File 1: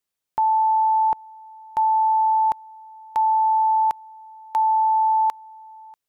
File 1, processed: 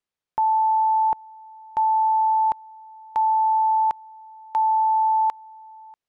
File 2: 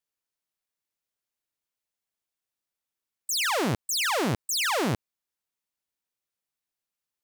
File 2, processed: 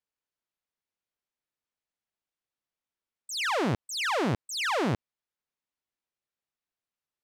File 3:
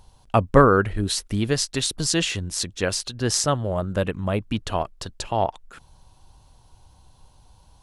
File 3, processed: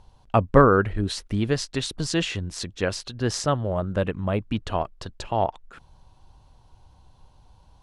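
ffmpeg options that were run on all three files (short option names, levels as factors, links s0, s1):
-af "aemphasis=mode=reproduction:type=50fm,volume=0.891"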